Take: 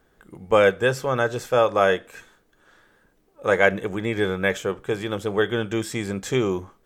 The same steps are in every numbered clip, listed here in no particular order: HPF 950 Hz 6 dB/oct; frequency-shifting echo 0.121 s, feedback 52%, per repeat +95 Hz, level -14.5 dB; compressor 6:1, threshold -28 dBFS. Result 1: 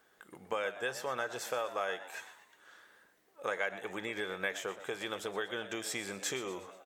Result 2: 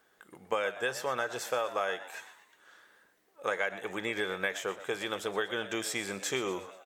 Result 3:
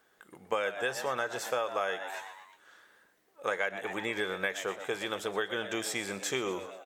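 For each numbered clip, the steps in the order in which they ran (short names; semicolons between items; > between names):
compressor > frequency-shifting echo > HPF; HPF > compressor > frequency-shifting echo; frequency-shifting echo > HPF > compressor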